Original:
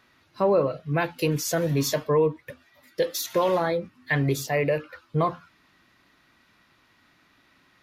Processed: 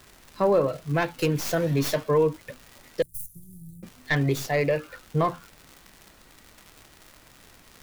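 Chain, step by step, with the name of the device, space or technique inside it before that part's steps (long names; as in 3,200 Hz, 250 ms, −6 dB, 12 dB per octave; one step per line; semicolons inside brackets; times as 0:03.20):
record under a worn stylus (stylus tracing distortion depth 0.13 ms; surface crackle 150 per second −35 dBFS; pink noise bed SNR 28 dB)
0:03.02–0:03.83: elliptic band-stop filter 130–9,500 Hz, stop band 60 dB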